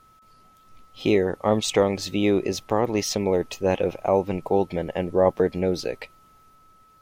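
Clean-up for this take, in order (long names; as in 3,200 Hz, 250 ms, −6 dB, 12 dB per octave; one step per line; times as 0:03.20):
notch filter 1,300 Hz, Q 30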